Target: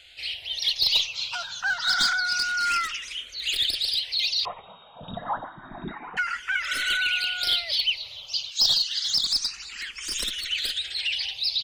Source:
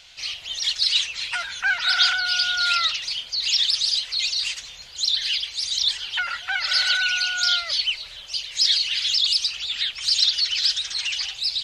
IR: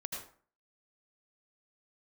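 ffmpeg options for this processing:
-filter_complex "[0:a]asettb=1/sr,asplit=3[a][b][c];[a]atrim=end=8.504[d];[b]atrim=start=8.5:end=9.08,asetpts=PTS-STARTPTS,afade=t=in:d=0.004:c=qsin,afade=t=out:st=0.576:d=0.004:c=qsin,highpass=f=1.4k:w=0.5412,highpass=f=1.4k:w=1.3066[e];[c]atrim=start=9.076[f];[d][e]acrossfade=d=0.004:c1=hsin:c2=qsin[g];[g][f]acrossfade=d=0.004:c1=qsin:c2=hsin,aeval=exprs='clip(val(0),-1,0.15)':c=same,asplit=2[h][i];[i]adelay=180.8,volume=-28dB,highshelf=f=4k:g=-4.07[j];[h][j]amix=inputs=2:normalize=0,asettb=1/sr,asplit=3[k][l][m];[k]atrim=end=4.454[n];[l]atrim=start=4.45:end=6.17,asetpts=PTS-STARTPTS,afade=t=in:d=0.004:c=qsin,afade=t=out:st=1.716:d=0.004:c=qsin,lowpass=f=3.2k:t=q:w=0.5098,lowpass=f=3.2k:t=q:w=0.6013,lowpass=f=3.2k:t=q:w=0.9,lowpass=f=3.2k:t=q:w=2.563,afreqshift=-3800[o];[m]atrim=start=6.166[p];[n][o]acrossfade=d=0.004:c1=hsin:c2=qsin[q];[q][p]acrossfade=d=0.004:c1=qsin:c2=hsin,asplit=2[r][s];[s]afreqshift=0.28[t];[r][t]amix=inputs=2:normalize=1"

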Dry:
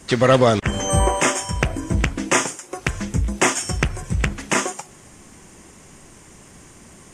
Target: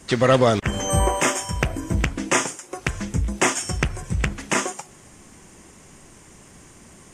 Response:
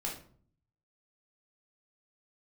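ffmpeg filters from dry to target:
-filter_complex "[0:a]asettb=1/sr,asplit=3[a][b][c];[a]atrim=end=0.414[d];[b]atrim=start=0.41:end=2.05,asetpts=PTS-STARTPTS,afade=t=in:d=0.004:c=qsin,afade=t=out:st=1.636:d=0.004:c=qsin,equalizer=f=12k:w=6.9:g=10.5[e];[c]atrim=start=2.046[f];[d][e]acrossfade=d=0.004:c1=hsin:c2=qsin[g];[g][f]acrossfade=d=0.004:c1=qsin:c2=hsin,volume=-2dB"

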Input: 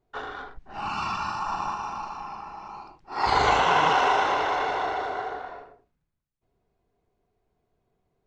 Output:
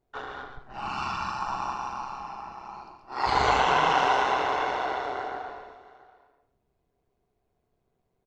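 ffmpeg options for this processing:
-filter_complex "[0:a]asplit=2[a][b];[b]aecho=0:1:682:0.106[c];[a][c]amix=inputs=2:normalize=0,tremolo=f=130:d=0.519,asplit=2[d][e];[e]aecho=0:1:137:0.422[f];[d][f]amix=inputs=2:normalize=0"

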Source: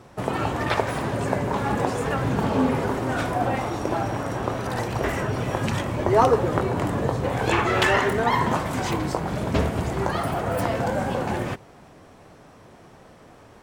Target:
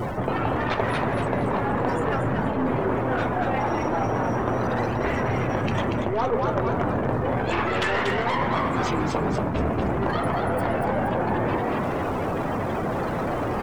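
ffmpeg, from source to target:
-filter_complex "[0:a]aeval=exprs='val(0)+0.5*0.0531*sgn(val(0))':c=same,afftdn=nr=22:nf=-32,aeval=exprs='0.631*(cos(1*acos(clip(val(0)/0.631,-1,1)))-cos(1*PI/2))+0.0501*(cos(6*acos(clip(val(0)/0.631,-1,1)))-cos(6*PI/2))':c=same,asplit=6[a][b][c][d][e][f];[b]adelay=236,afreqshift=120,volume=-5dB[g];[c]adelay=472,afreqshift=240,volume=-12.7dB[h];[d]adelay=708,afreqshift=360,volume=-20.5dB[i];[e]adelay=944,afreqshift=480,volume=-28.2dB[j];[f]adelay=1180,afreqshift=600,volume=-36dB[k];[a][g][h][i][j][k]amix=inputs=6:normalize=0,areverse,acompressor=threshold=-28dB:ratio=5,areverse,volume=6dB"

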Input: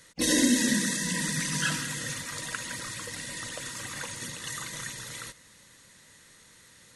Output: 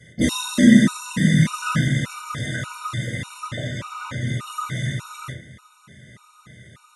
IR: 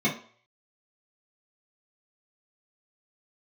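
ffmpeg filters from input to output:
-filter_complex "[0:a]asettb=1/sr,asplit=3[a][b][c];[a]atrim=end=3.474[d];[b]atrim=start=3.47:end=4.27,asetpts=PTS-STARTPTS,afade=t=in:d=0.004:c=qsin,afade=t=out:st=0.796:d=0.004:c=qsin,acrossover=split=6500[e][f];[f]acompressor=threshold=-51dB:ratio=4:attack=1:release=60[g];[e][g]amix=inputs=2:normalize=0[h];[c]atrim=start=4.266[i];[d][h]acrossfade=d=0.004:c1=hsin:c2=qsin[j];[j][i]acrossfade=d=0.004:c1=qsin:c2=hsin[k];[1:a]atrim=start_sample=2205,asetrate=25137,aresample=44100[l];[k][l]afir=irnorm=-1:irlink=0,afftfilt=real='re*gt(sin(2*PI*1.7*pts/sr)*(1-2*mod(floor(b*sr/1024/740),2)),0)':imag='im*gt(sin(2*PI*1.7*pts/sr)*(1-2*mod(floor(b*sr/1024/740),2)),0)':win_size=1024:overlap=0.75,volume=-4.5dB"

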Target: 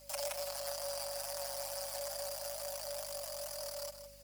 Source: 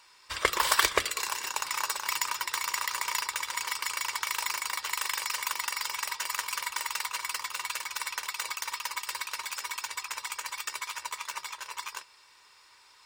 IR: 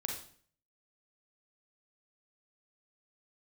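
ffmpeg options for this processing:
-af "acompressor=threshold=-40dB:ratio=3,aeval=exprs='max(val(0),0)':c=same,afreqshift=130,asetrate=62367,aresample=44100,atempo=0.707107,flanger=delay=16:depth=5.7:speed=0.72,asetrate=135828,aresample=44100,aeval=exprs='val(0)+0.000282*(sin(2*PI*50*n/s)+sin(2*PI*2*50*n/s)/2+sin(2*PI*3*50*n/s)/3+sin(2*PI*4*50*n/s)/4+sin(2*PI*5*50*n/s)/5)':c=same,aecho=1:1:159:0.316,volume=8dB"

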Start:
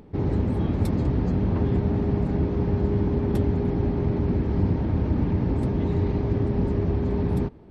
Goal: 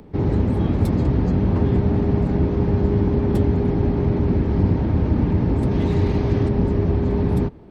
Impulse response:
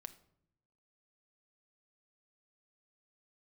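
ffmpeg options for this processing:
-filter_complex "[0:a]asettb=1/sr,asplit=3[a][b][c];[a]atrim=end=5.714[d];[b]atrim=start=5.71:end=6.49,asetpts=PTS-STARTPTS,afade=t=in:d=0.004:c=qsin,afade=t=out:st=0.776:d=0.004:c=qsin,highshelf=f=2k:g=8[e];[c]atrim=start=6.486[f];[d][e]acrossfade=d=0.004:c1=hsin:c2=qsin[g];[g][f]acrossfade=d=0.004:c1=qsin:c2=hsin,acrossover=split=140|620|900[h][i][j][k];[k]asoftclip=type=hard:threshold=-39.5dB[l];[h][i][j][l]amix=inputs=4:normalize=0,volume=4.5dB"

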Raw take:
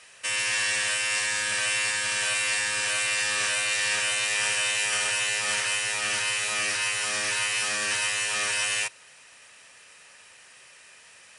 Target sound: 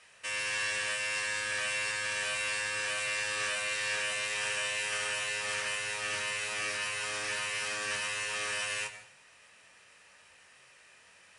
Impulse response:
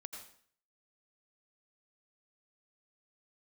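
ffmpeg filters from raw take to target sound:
-filter_complex "[0:a]highshelf=f=4.2k:g=-7,asplit=2[a][b];[1:a]atrim=start_sample=2205,lowshelf=f=190:g=11.5,adelay=21[c];[b][c]afir=irnorm=-1:irlink=0,volume=-3.5dB[d];[a][d]amix=inputs=2:normalize=0,volume=-5.5dB"

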